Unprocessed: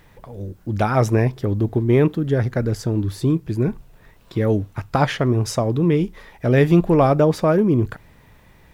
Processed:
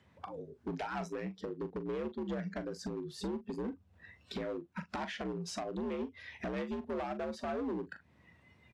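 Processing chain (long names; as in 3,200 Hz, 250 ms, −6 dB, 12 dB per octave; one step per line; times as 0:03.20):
frequency shifter +61 Hz
harmonic and percussive parts rebalanced harmonic −3 dB
downward compressor 6 to 1, threshold −35 dBFS, peak gain reduction 21.5 dB
noise reduction from a noise print of the clip's start 16 dB
hard clipping −36.5 dBFS, distortion −9 dB
high-frequency loss of the air 65 metres
double-tracking delay 41 ms −12 dB
level +3 dB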